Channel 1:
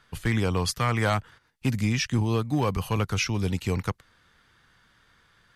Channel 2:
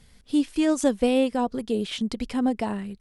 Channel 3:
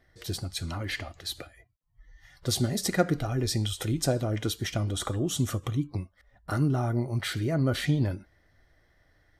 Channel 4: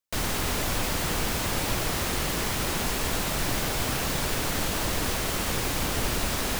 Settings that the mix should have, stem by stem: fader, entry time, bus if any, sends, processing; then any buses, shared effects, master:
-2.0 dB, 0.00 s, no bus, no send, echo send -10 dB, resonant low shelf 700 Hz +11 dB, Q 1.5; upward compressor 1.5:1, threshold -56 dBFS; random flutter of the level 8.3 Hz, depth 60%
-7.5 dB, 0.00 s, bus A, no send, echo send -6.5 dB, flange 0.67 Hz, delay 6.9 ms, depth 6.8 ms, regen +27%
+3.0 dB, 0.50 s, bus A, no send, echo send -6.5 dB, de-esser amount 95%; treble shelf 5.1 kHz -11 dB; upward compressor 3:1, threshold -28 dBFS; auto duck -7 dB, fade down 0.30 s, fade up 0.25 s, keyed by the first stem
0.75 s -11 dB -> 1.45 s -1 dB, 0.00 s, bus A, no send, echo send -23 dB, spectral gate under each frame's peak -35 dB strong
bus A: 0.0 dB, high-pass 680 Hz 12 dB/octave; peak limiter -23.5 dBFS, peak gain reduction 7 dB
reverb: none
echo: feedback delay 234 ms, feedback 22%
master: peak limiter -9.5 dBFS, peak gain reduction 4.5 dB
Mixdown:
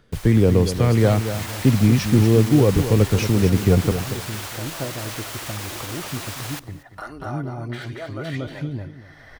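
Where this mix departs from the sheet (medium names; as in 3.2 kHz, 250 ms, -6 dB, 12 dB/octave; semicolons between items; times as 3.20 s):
stem 1: missing random flutter of the level 8.3 Hz, depth 60%; stem 2: muted; master: missing peak limiter -9.5 dBFS, peak gain reduction 4.5 dB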